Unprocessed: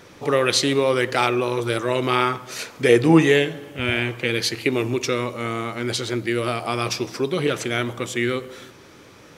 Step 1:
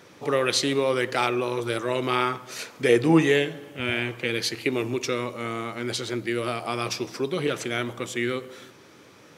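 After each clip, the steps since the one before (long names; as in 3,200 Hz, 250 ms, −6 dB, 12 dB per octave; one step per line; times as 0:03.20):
high-pass filter 110 Hz
level −4 dB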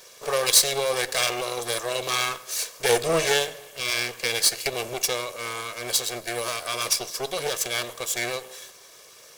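lower of the sound and its delayed copy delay 1.8 ms
bass and treble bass −13 dB, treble +14 dB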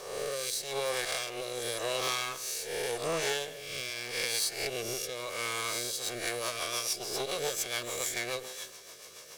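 peak hold with a rise ahead of every peak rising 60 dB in 0.81 s
downward compressor 16 to 1, threshold −27 dBFS, peak gain reduction 18.5 dB
rotating-speaker cabinet horn 0.85 Hz, later 7 Hz, at 0:05.61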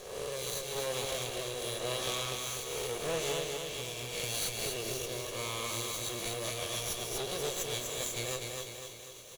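lower of the sound and its delayed copy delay 0.3 ms
on a send: repeating echo 247 ms, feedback 52%, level −4 dB
on the sum: level −2.5 dB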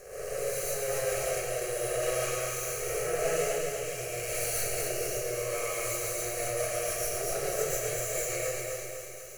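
phaser with its sweep stopped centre 960 Hz, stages 6
comb and all-pass reverb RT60 0.74 s, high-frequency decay 0.95×, pre-delay 90 ms, DRR −6.5 dB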